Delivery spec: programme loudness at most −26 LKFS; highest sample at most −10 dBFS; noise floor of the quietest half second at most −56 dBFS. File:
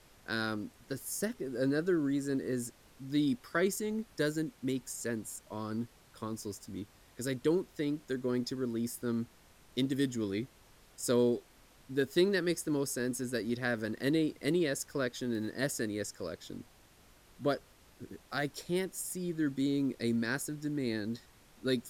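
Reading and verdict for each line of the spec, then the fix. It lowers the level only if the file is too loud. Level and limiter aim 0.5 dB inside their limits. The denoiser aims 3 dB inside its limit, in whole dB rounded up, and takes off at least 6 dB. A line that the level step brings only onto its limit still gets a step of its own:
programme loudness −34.5 LKFS: in spec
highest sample −15.0 dBFS: in spec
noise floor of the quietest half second −61 dBFS: in spec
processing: no processing needed

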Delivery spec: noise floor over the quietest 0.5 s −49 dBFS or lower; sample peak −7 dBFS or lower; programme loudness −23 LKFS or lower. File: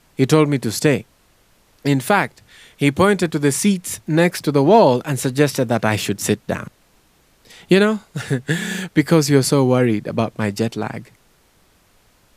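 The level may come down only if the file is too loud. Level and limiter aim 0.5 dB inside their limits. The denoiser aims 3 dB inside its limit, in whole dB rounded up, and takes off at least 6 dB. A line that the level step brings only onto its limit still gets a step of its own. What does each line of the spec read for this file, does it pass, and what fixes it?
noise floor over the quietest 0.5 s −56 dBFS: in spec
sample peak −1.5 dBFS: out of spec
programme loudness −18.0 LKFS: out of spec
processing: level −5.5 dB
brickwall limiter −7.5 dBFS

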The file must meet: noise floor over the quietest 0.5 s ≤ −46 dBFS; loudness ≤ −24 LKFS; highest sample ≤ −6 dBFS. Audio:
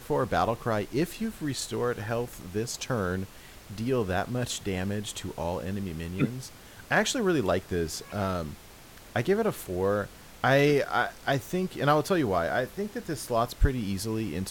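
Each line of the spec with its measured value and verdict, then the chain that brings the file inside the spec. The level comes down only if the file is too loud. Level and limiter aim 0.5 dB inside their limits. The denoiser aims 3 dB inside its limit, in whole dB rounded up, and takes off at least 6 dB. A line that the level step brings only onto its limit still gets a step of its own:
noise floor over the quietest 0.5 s −49 dBFS: in spec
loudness −29.0 LKFS: in spec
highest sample −12.5 dBFS: in spec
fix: no processing needed

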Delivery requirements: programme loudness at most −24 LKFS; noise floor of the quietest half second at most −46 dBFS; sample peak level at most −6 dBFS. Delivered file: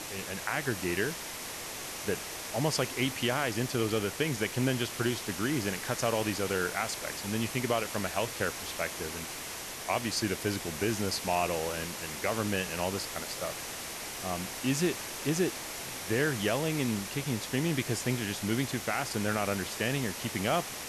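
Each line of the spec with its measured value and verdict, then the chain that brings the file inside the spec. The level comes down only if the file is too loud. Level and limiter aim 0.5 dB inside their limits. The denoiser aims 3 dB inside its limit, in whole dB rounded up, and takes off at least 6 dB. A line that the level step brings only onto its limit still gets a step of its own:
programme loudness −32.0 LKFS: in spec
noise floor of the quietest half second −40 dBFS: out of spec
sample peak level −15.5 dBFS: in spec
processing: broadband denoise 9 dB, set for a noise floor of −40 dBFS

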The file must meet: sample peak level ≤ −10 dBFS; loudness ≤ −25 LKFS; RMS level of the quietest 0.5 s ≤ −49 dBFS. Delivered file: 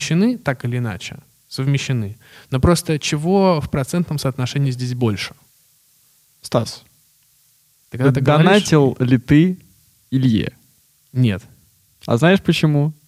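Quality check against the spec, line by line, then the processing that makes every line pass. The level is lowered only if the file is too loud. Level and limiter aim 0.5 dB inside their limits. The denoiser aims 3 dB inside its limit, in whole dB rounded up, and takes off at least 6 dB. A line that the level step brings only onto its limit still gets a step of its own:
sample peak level −2.0 dBFS: out of spec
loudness −18.0 LKFS: out of spec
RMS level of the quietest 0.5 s −57 dBFS: in spec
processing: level −7.5 dB
brickwall limiter −10.5 dBFS

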